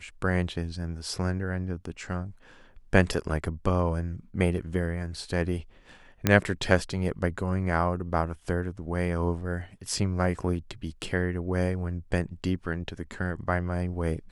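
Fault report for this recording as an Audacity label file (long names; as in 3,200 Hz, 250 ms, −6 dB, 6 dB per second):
6.270000	6.270000	click −6 dBFS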